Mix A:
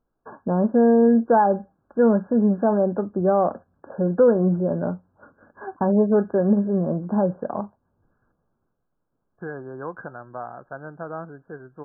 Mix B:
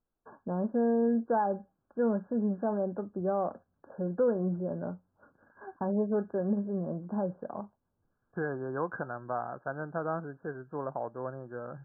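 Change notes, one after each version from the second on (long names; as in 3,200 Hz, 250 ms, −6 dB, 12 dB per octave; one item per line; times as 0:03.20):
first voice −11.0 dB
second voice: entry −1.05 s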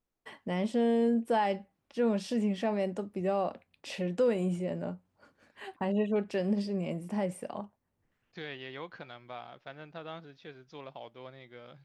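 second voice −10.0 dB
master: remove linear-phase brick-wall low-pass 1,700 Hz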